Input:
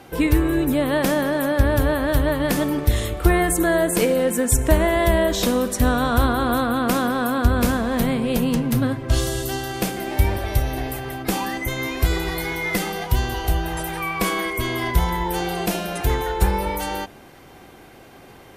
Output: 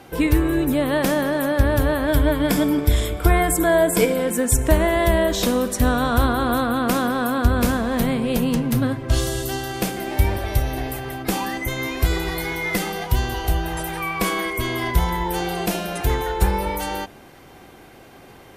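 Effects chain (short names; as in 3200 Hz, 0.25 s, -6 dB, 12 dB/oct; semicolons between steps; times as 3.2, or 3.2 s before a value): 2.07–4.3 ripple EQ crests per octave 1.7, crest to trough 8 dB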